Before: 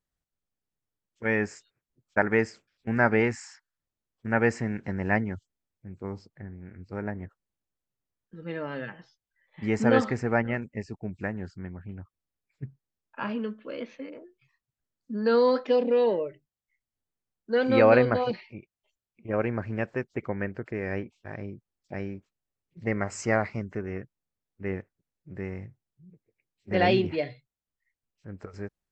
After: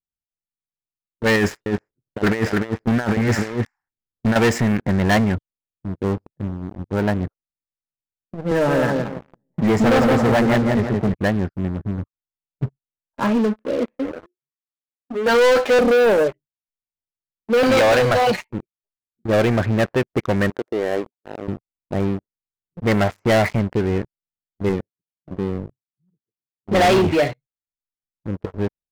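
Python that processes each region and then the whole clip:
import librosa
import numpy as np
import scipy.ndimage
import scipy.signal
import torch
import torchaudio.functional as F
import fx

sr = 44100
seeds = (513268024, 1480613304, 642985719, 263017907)

y = fx.chain(x, sr, fx.over_compress(threshold_db=-29.0, ratio=-0.5),
    fx.echo_single(ms=299, db=-5.0), at=(1.36, 4.36))
y = fx.chain(y, sr, fx.high_shelf(hz=2200.0, db=-7.5),
    fx.echo_wet_lowpass(ms=169, feedback_pct=31, hz=1900.0, wet_db=-5),
    fx.band_squash(depth_pct=40), at=(8.51, 11.14))
y = fx.chain(y, sr, fx.highpass(hz=390.0, slope=12),
    fx.doubler(ms=12.0, db=-2.5), at=(14.11, 15.79))
y = fx.chain(y, sr, fx.peak_eq(hz=270.0, db=-9.5, octaves=2.3),
    fx.band_squash(depth_pct=70), at=(17.63, 18.48))
y = fx.chain(y, sr, fx.highpass(hz=400.0, slope=12),
    fx.high_shelf(hz=3900.0, db=-12.0), at=(20.5, 21.48))
y = fx.chain(y, sr, fx.highpass(hz=120.0, slope=12),
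    fx.peak_eq(hz=1200.0, db=-11.5, octaves=1.8), at=(24.69, 26.75))
y = fx.env_lowpass(y, sr, base_hz=320.0, full_db=-21.5)
y = fx.dynamic_eq(y, sr, hz=680.0, q=2.6, threshold_db=-39.0, ratio=4.0, max_db=5)
y = fx.leveller(y, sr, passes=5)
y = y * librosa.db_to_amplitude(-3.0)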